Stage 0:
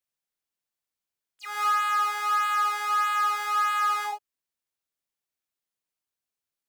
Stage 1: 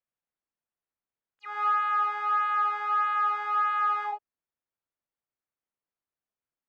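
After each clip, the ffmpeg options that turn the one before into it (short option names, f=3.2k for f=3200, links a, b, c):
-af "lowpass=1.7k"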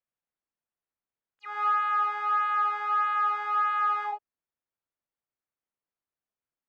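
-af anull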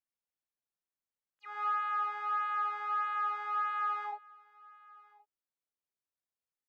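-af "aecho=1:1:1071:0.0668,volume=-7dB"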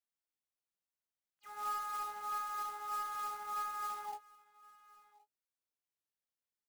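-filter_complex "[0:a]acrossover=split=700|2100[a][b][c];[c]aeval=exprs='(mod(750*val(0)+1,2)-1)/750':c=same[d];[a][b][d]amix=inputs=3:normalize=0,acrusher=bits=3:mode=log:mix=0:aa=0.000001,asplit=2[e][f];[f]adelay=19,volume=-9dB[g];[e][g]amix=inputs=2:normalize=0,volume=-4.5dB"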